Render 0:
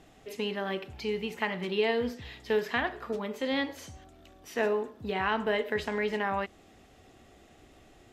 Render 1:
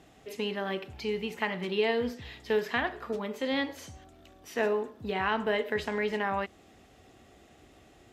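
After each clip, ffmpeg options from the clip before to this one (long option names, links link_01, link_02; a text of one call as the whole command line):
ffmpeg -i in.wav -af "highpass=42" out.wav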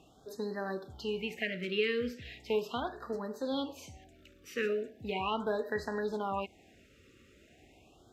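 ffmpeg -i in.wav -af "superequalizer=12b=1.78:16b=0.708,afftfilt=real='re*(1-between(b*sr/1024,800*pow(2800/800,0.5+0.5*sin(2*PI*0.38*pts/sr))/1.41,800*pow(2800/800,0.5+0.5*sin(2*PI*0.38*pts/sr))*1.41))':imag='im*(1-between(b*sr/1024,800*pow(2800/800,0.5+0.5*sin(2*PI*0.38*pts/sr))/1.41,800*pow(2800/800,0.5+0.5*sin(2*PI*0.38*pts/sr))*1.41))':win_size=1024:overlap=0.75,volume=-3.5dB" out.wav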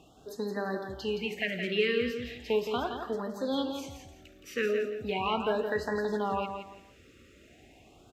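ffmpeg -i in.wav -af "aecho=1:1:169|338|507:0.447|0.121|0.0326,volume=3dB" out.wav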